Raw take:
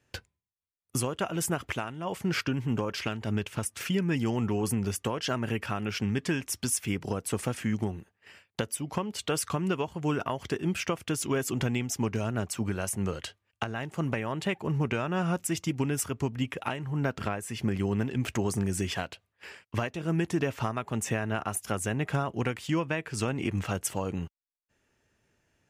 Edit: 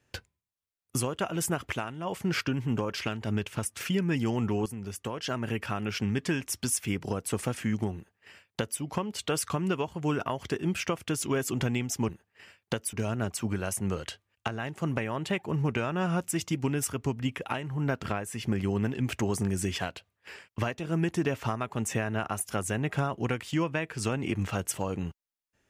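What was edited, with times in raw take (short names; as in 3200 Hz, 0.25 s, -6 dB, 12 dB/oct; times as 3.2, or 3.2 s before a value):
4.66–5.94 fade in equal-power, from -13 dB
7.96–8.8 copy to 12.09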